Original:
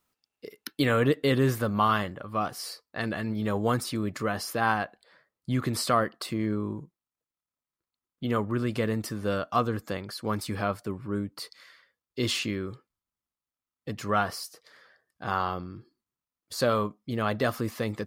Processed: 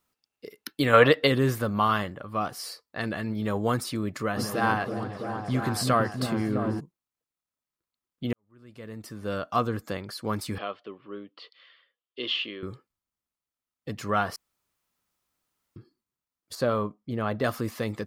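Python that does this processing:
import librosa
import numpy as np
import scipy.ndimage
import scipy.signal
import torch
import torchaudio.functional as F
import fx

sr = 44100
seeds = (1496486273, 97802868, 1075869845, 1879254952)

y = fx.spec_box(x, sr, start_s=0.94, length_s=0.33, low_hz=460.0, high_hz=5600.0, gain_db=11)
y = fx.echo_opening(y, sr, ms=329, hz=400, octaves=1, feedback_pct=70, wet_db=-3, at=(4.36, 6.79), fade=0.02)
y = fx.cabinet(y, sr, low_hz=460.0, low_slope=12, high_hz=3400.0, hz=(620.0, 890.0, 1500.0, 2200.0, 3100.0), db=(-3, -9, -8, -5, 9), at=(10.58, 12.63))
y = fx.high_shelf(y, sr, hz=2300.0, db=-9.5, at=(16.55, 17.44))
y = fx.edit(y, sr, fx.fade_in_span(start_s=8.33, length_s=1.16, curve='qua'),
    fx.room_tone_fill(start_s=14.36, length_s=1.4), tone=tone)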